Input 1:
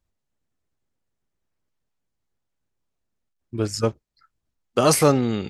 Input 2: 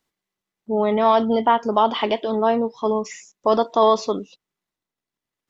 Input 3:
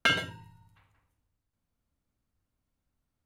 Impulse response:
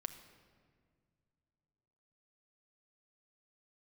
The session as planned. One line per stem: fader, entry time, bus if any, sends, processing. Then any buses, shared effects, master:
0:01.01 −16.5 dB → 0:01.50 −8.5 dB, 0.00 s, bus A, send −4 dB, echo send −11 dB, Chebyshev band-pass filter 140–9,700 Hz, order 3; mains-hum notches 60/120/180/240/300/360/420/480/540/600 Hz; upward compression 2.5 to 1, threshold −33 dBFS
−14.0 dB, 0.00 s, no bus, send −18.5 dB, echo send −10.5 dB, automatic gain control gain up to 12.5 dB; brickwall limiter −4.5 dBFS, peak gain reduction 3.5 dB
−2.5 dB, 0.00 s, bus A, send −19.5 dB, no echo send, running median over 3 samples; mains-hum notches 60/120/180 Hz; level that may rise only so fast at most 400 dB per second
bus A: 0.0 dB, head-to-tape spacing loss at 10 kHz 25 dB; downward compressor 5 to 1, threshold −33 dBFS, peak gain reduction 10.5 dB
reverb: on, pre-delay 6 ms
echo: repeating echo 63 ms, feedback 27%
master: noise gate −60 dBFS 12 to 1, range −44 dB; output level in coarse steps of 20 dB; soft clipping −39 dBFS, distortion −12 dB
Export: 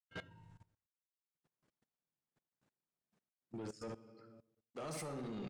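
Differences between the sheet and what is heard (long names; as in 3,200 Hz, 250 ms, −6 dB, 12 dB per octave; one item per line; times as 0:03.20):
stem 2: muted
stem 3: missing mains-hum notches 60/120/180 Hz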